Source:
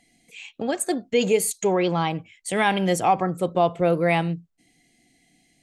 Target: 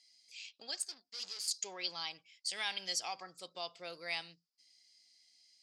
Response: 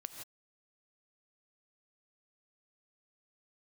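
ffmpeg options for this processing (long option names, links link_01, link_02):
-filter_complex "[0:a]asettb=1/sr,asplit=3[link_01][link_02][link_03];[link_01]atrim=end=0.824[link_04];[link_02]atrim=start=0.82:end=1.48,asetpts=PTS-STARTPTS,afade=type=in:duration=0.004:curve=qsin,afade=type=out:start_time=0.656:duration=0.004:curve=qsin,aeval=exprs='(tanh(39.8*val(0)+0.8)-tanh(0.8))/39.8':channel_layout=same[link_05];[link_03]atrim=start=1.476[link_06];[link_04][link_05]acrossfade=duration=0.004:curve1=hsin:curve2=qsin[link_07];[link_07][link_06]acrossfade=duration=0.004:curve1=qsin:curve2=hsin,bandpass=frequency=4900:width_type=q:width=11:csg=0,volume=13dB"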